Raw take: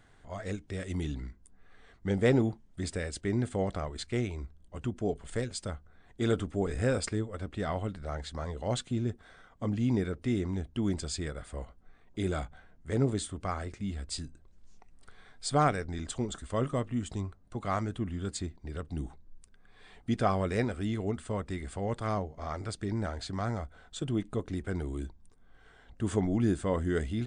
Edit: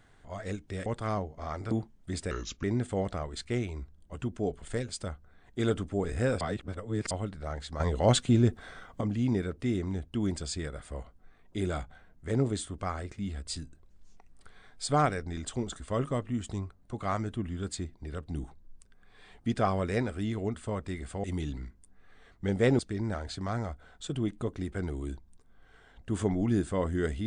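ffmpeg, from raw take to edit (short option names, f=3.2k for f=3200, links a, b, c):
-filter_complex "[0:a]asplit=11[a][b][c][d][e][f][g][h][i][j][k];[a]atrim=end=0.862[l];[b]atrim=start=21.858:end=22.712[m];[c]atrim=start=2.408:end=3.014[n];[d]atrim=start=3.01:end=3.26,asetpts=PTS-STARTPTS,asetrate=33516,aresample=44100[o];[e]atrim=start=3.256:end=7.032[p];[f]atrim=start=7.028:end=7.732,asetpts=PTS-STARTPTS,areverse[q];[g]atrim=start=7.728:end=8.422[r];[h]atrim=start=8.418:end=9.632,asetpts=PTS-STARTPTS,volume=8.5dB[s];[i]atrim=start=9.628:end=21.862[t];[j]atrim=start=0.858:end=2.412[u];[k]atrim=start=22.708[v];[l][m]acrossfade=d=0.004:c1=hsin:c2=hsin[w];[w][n]acrossfade=d=0.004:c1=hsin:c2=hsin[x];[x][o]acrossfade=d=0.004:c1=hsin:c2=hsin[y];[y][p]acrossfade=d=0.004:c1=hsin:c2=hsin[z];[z][q]acrossfade=d=0.004:c1=hsin:c2=hsin[aa];[aa][r]acrossfade=d=0.004:c1=hsin:c2=hsin[ab];[ab][s]acrossfade=d=0.004:c1=hsin:c2=hsin[ac];[ac][t]acrossfade=d=0.004:c1=hsin:c2=hsin[ad];[ad][u]acrossfade=d=0.004:c1=hsin:c2=hsin[ae];[ae][v]acrossfade=d=0.004:c1=hsin:c2=hsin"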